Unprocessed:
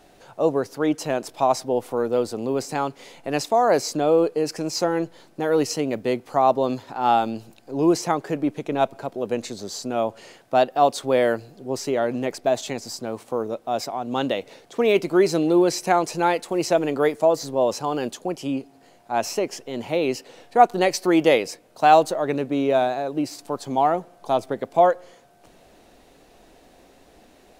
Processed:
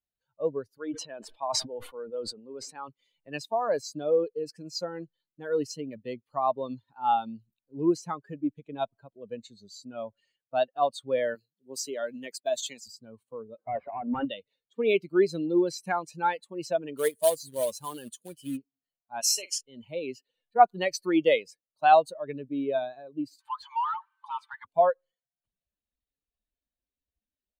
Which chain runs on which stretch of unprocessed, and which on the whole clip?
0:00.78–0:02.89: low-pass filter 2,600 Hz 6 dB per octave + parametric band 79 Hz −11.5 dB 2.8 octaves + level that may fall only so fast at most 55 dB per second
0:11.35–0:12.88: high-pass filter 180 Hz + downward expander −45 dBFS + high-shelf EQ 2,900 Hz +9.5 dB
0:13.58–0:14.25: mid-hump overdrive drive 24 dB, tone 1,000 Hz, clips at −10 dBFS + low-pass filter 2,600 Hz 24 dB per octave
0:16.97–0:18.57: log-companded quantiser 4 bits + parametric band 9,800 Hz +8.5 dB 0.82 octaves
0:19.21–0:19.61: low-pass filter 11,000 Hz + spectral tilt +4.5 dB per octave + double-tracking delay 46 ms −8 dB
0:23.40–0:24.65: linear-phase brick-wall high-pass 820 Hz + mid-hump overdrive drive 28 dB, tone 1,200 Hz, clips at −15.5 dBFS
whole clip: spectral dynamics exaggerated over time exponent 2; low-shelf EQ 120 Hz −10.5 dB; level −1.5 dB

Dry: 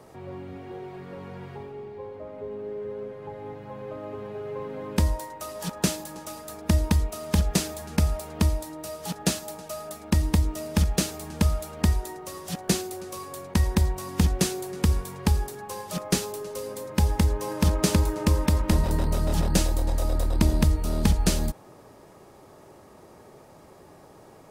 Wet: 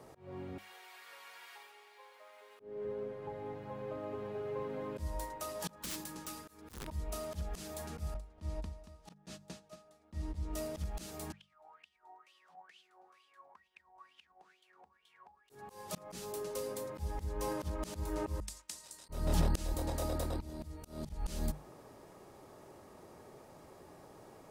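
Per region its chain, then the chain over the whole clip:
0:00.58–0:02.60: high-pass filter 1,100 Hz + spectral tilt +4 dB per octave
0:05.76–0:06.88: downward compressor 10 to 1, threshold −26 dBFS + wrap-around overflow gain 26 dB + parametric band 660 Hz −12.5 dB 0.53 octaves
0:08.14–0:10.53: noise gate −32 dBFS, range −20 dB + high-frequency loss of the air 51 metres + repeating echo 230 ms, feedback 28%, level −18 dB
0:11.32–0:15.50: mains-hum notches 60/120/180/240/300/360/420/480/540 Hz + downward compressor 8 to 1, threshold −33 dBFS + LFO wah 2.2 Hz 760–3,200 Hz, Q 10
0:18.40–0:19.09: resonant band-pass 7,400 Hz, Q 1.7 + downward expander −54 dBFS
0:19.74–0:21.10: high-pass filter 80 Hz + volume swells 470 ms
whole clip: mains-hum notches 50/100/150/200 Hz; volume swells 256 ms; level −5 dB

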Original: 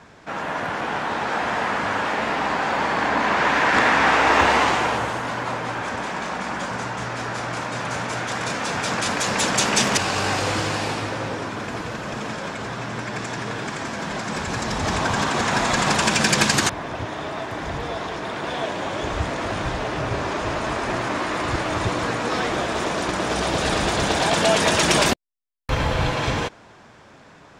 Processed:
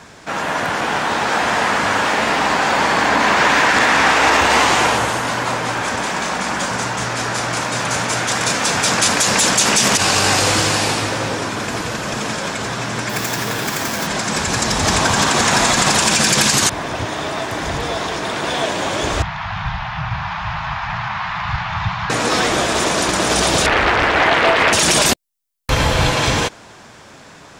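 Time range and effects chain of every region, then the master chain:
0:13.09–0:14.07: running median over 5 samples + high-shelf EQ 6,200 Hz +6.5 dB
0:19.22–0:22.10: elliptic band-stop filter 170–810 Hz, stop band 50 dB + high-frequency loss of the air 330 metres + bad sample-rate conversion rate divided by 3×, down none, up filtered
0:23.66–0:24.73: low-pass with resonance 1,900 Hz, resonance Q 2.1 + parametric band 180 Hz −10 dB 0.64 octaves + highs frequency-modulated by the lows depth 0.79 ms
whole clip: high-shelf EQ 4,500 Hz +12 dB; boost into a limiter +8.5 dB; level −3 dB

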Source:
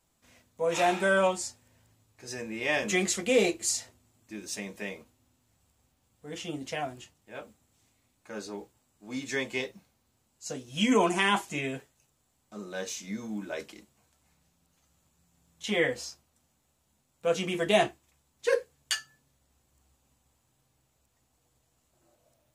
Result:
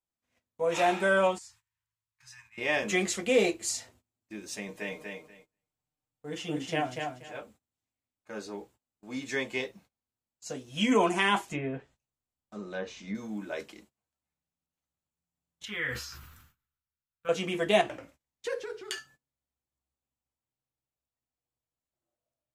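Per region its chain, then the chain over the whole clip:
0:01.38–0:02.58: downward compressor 3 to 1, threshold −44 dBFS + Chebyshev band-stop filter 150–970 Hz, order 4 + parametric band 100 Hz −6 dB 1.4 octaves
0:04.68–0:07.37: comb filter 6.6 ms, depth 62% + repeating echo 240 ms, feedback 19%, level −4.5 dB
0:11.52–0:13.15: treble cut that deepens with the level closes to 1,400 Hz, closed at −29 dBFS + low-shelf EQ 130 Hz +7.5 dB
0:15.65–0:17.29: drawn EQ curve 100 Hz 0 dB, 220 Hz −12 dB, 450 Hz −15 dB, 670 Hz −22 dB, 1,400 Hz +3 dB, 2,000 Hz −4 dB, 3,300 Hz −6 dB, 9,000 Hz −13 dB, 13,000 Hz +1 dB + level that may fall only so fast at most 43 dB per second
0:17.81–0:18.98: downward compressor 3 to 1, threshold −31 dBFS + delay with pitch and tempo change per echo 86 ms, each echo −2 semitones, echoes 2, each echo −6 dB
whole clip: noise gate −56 dBFS, range −22 dB; bass and treble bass −2 dB, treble −4 dB

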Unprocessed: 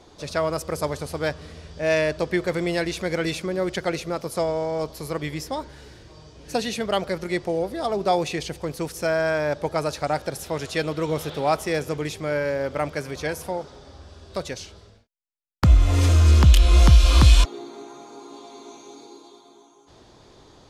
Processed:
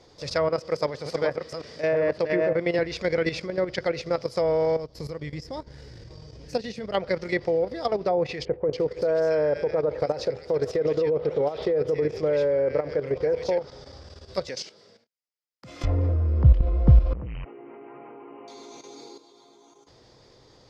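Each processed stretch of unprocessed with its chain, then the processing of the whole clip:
0:00.49–0:02.79: delay that plays each chunk backwards 565 ms, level −3 dB + high-pass filter 150 Hz
0:04.76–0:06.95: low-shelf EQ 310 Hz +9 dB + downward compressor 1.5 to 1, threshold −36 dBFS + transient designer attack 0 dB, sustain −12 dB
0:08.45–0:13.58: downward compressor 10 to 1, threshold −25 dBFS + parametric band 450 Hz +11 dB 0.92 octaves + multiband delay without the direct sound lows, highs 280 ms, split 1,800 Hz
0:14.49–0:15.84: high-pass filter 170 Hz 24 dB per octave + volume swells 211 ms
0:17.13–0:18.48: hard clipping −19.5 dBFS + downward compressor 10 to 1, threshold −31 dBFS + linear-phase brick-wall low-pass 3,100 Hz
whole clip: treble cut that deepens with the level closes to 750 Hz, closed at −15.5 dBFS; thirty-one-band graphic EQ 125 Hz +7 dB, 500 Hz +8 dB, 2,000 Hz +6 dB, 5,000 Hz +11 dB, 10,000 Hz −5 dB; output level in coarse steps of 11 dB

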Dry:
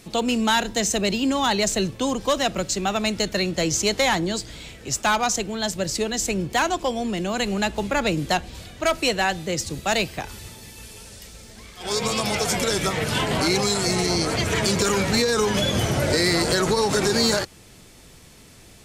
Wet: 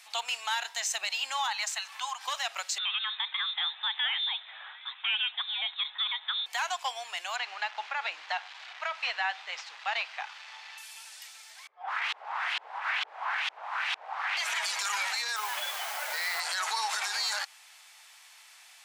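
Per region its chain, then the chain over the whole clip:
0:01.47–0:02.25: high-pass filter 860 Hz 24 dB per octave + tilt shelving filter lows +5 dB, about 1,300 Hz + upward compression, threshold −31 dBFS
0:02.78–0:06.46: high-pass filter 330 Hz + downward compressor 2 to 1, threshold −26 dBFS + voice inversion scrambler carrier 3,900 Hz
0:07.36–0:10.78: linear delta modulator 64 kbit/s, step −30.5 dBFS + high-frequency loss of the air 200 metres
0:11.67–0:14.37: parametric band 13,000 Hz −13.5 dB 0.27 octaves + wrap-around overflow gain 22 dB + auto-filter low-pass saw up 2.2 Hz 320–3,500 Hz
0:15.36–0:16.40: low-pass filter 1,200 Hz 6 dB per octave + bit-depth reduction 6 bits, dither triangular
whole clip: Chebyshev high-pass filter 790 Hz, order 4; parametric band 2,300 Hz +4.5 dB 2.2 octaves; brickwall limiter −17 dBFS; level −4.5 dB

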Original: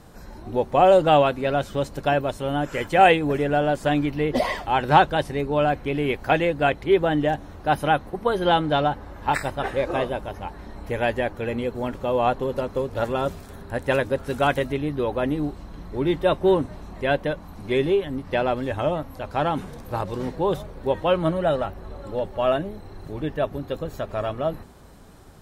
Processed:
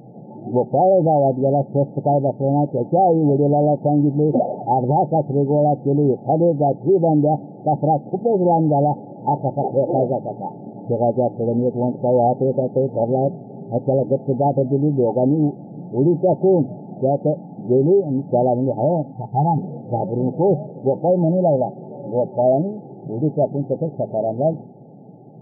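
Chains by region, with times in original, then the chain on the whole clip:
0:19.12–0:19.58: parametric band 270 Hz −12 dB 0.78 octaves + comb filter 0.9 ms, depth 93%
whole clip: brick-wall band-pass 110–890 Hz; low-shelf EQ 200 Hz +7 dB; boost into a limiter +13 dB; level −7 dB

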